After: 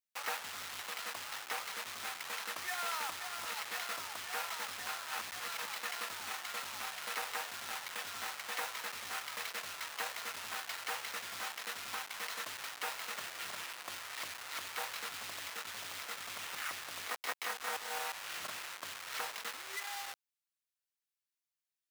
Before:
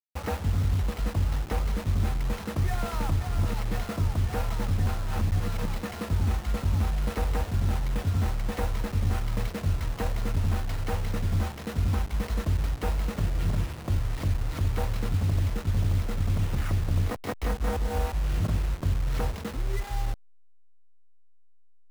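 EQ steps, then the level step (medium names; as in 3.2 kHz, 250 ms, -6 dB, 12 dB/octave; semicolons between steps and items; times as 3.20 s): high-pass 1.3 kHz 12 dB/octave; +2.5 dB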